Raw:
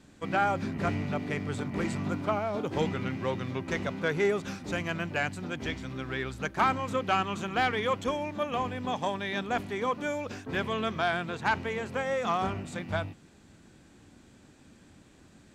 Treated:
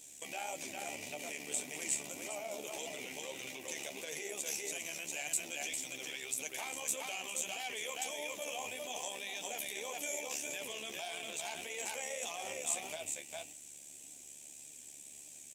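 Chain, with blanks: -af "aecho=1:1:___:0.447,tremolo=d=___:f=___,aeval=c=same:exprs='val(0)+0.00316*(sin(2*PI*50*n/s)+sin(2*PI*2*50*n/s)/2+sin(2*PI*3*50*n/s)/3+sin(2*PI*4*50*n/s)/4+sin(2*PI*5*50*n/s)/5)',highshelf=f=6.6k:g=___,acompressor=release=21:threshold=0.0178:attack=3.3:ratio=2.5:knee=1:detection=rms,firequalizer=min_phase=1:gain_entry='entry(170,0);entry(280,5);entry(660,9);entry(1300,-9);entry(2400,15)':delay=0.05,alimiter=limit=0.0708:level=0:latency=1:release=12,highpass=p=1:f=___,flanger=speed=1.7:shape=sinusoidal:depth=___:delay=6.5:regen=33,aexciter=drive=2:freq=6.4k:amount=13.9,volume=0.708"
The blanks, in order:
402, 0.71, 72, -8.5, 800, 7.7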